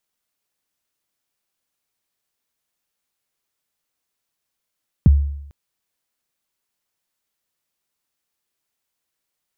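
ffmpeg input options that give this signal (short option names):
-f lavfi -i "aevalsrc='0.562*pow(10,-3*t/0.78)*sin(2*PI*(220*0.021/log(71/220)*(exp(log(71/220)*min(t,0.021)/0.021)-1)+71*max(t-0.021,0)))':d=0.45:s=44100"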